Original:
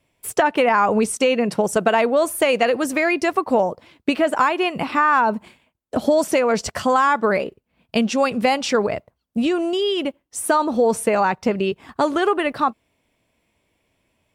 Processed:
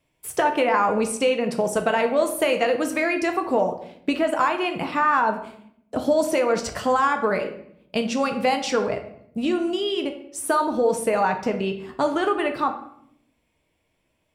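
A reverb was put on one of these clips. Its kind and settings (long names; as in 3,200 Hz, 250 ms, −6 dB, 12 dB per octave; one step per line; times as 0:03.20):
rectangular room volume 140 cubic metres, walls mixed, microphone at 0.51 metres
level −4.5 dB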